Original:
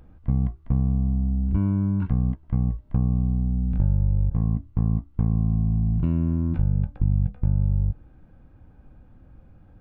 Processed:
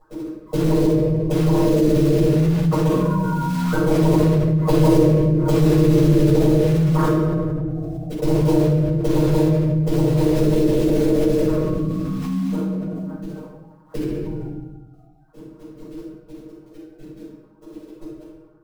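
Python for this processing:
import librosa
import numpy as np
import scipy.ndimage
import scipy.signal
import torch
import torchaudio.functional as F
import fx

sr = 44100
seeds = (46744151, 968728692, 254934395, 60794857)

p1 = fx.sine_speech(x, sr)
p2 = fx.doppler_pass(p1, sr, speed_mps=11, closest_m=3.9, pass_at_s=2.6)
p3 = fx.env_lowpass(p2, sr, base_hz=330.0, full_db=-24.5)
p4 = fx.hum_notches(p3, sr, base_hz=50, count=5)
p5 = fx.rider(p4, sr, range_db=3, speed_s=0.5)
p6 = fx.fixed_phaser(p5, sr, hz=760.0, stages=6)
p7 = fx.stretch_grains(p6, sr, factor=1.9, grain_ms=27.0)
p8 = fx.quant_float(p7, sr, bits=2)
p9 = p8 + fx.echo_feedback(p8, sr, ms=139, feedback_pct=40, wet_db=-23.5, dry=0)
p10 = fx.room_shoebox(p9, sr, seeds[0], volume_m3=370.0, walls='mixed', distance_m=6.6)
p11 = fx.env_flatten(p10, sr, amount_pct=70)
y = p11 * 10.0 ** (-1.0 / 20.0)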